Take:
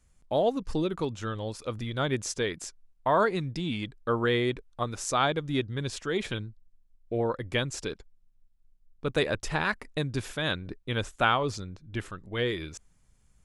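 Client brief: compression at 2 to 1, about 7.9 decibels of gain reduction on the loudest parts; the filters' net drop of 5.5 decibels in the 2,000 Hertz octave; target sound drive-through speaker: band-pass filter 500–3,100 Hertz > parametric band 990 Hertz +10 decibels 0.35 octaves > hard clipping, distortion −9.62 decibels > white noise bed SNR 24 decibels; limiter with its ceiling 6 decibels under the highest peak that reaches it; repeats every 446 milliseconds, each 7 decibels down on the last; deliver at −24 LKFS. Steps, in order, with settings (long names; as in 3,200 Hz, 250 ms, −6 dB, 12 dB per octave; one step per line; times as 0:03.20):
parametric band 2,000 Hz −8 dB
downward compressor 2 to 1, threshold −36 dBFS
brickwall limiter −27 dBFS
band-pass filter 500–3,100 Hz
parametric band 990 Hz +10 dB 0.35 octaves
repeating echo 446 ms, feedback 45%, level −7 dB
hard clipping −34.5 dBFS
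white noise bed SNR 24 dB
level +19 dB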